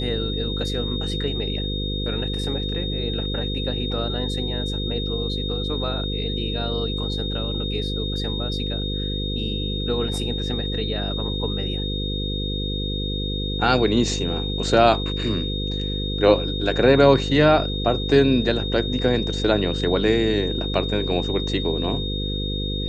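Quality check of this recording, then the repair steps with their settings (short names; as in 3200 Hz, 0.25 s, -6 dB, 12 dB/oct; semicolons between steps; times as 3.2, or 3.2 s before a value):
buzz 50 Hz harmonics 10 -27 dBFS
tone 3700 Hz -29 dBFS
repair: notch 3700 Hz, Q 30; de-hum 50 Hz, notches 10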